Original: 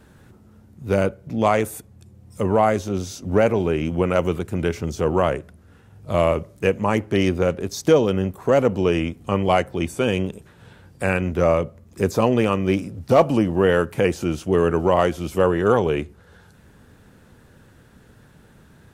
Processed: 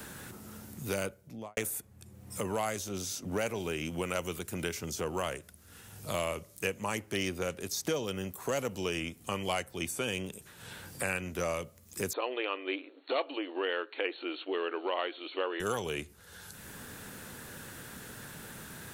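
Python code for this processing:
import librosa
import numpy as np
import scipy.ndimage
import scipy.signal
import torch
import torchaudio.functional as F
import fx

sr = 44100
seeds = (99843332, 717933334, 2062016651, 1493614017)

y = fx.studio_fade_out(x, sr, start_s=1.05, length_s=0.52)
y = fx.brickwall_bandpass(y, sr, low_hz=270.0, high_hz=4400.0, at=(12.13, 15.6))
y = scipy.signal.lfilter([1.0, -0.9], [1.0], y)
y = fx.band_squash(y, sr, depth_pct=70)
y = F.gain(torch.from_numpy(y), 3.0).numpy()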